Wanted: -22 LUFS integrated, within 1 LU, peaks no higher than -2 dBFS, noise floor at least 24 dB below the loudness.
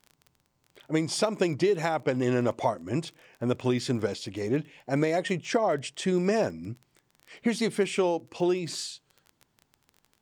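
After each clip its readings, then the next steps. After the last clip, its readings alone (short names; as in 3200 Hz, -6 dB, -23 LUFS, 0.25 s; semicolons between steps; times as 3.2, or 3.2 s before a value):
ticks 20/s; loudness -28.5 LUFS; peak -13.0 dBFS; loudness target -22.0 LUFS
-> de-click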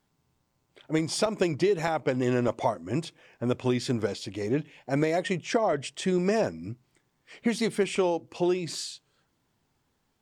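ticks 0/s; loudness -28.5 LUFS; peak -13.0 dBFS; loudness target -22.0 LUFS
-> gain +6.5 dB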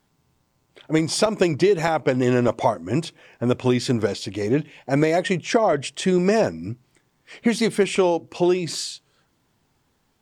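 loudness -22.0 LUFS; peak -6.5 dBFS; noise floor -68 dBFS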